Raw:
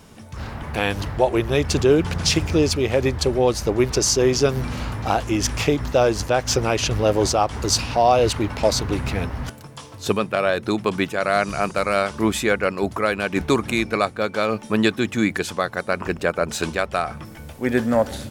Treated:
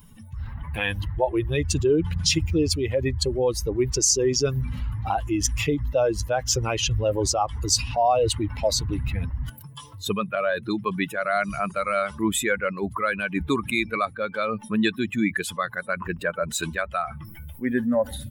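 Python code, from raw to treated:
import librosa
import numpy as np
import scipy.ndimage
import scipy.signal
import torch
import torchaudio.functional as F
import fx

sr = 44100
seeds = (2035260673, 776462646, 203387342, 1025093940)

y = fx.bin_expand(x, sr, power=2.0)
y = fx.dynamic_eq(y, sr, hz=7100.0, q=1.7, threshold_db=-44.0, ratio=4.0, max_db=6)
y = fx.env_flatten(y, sr, amount_pct=50)
y = y * librosa.db_to_amplitude(-3.0)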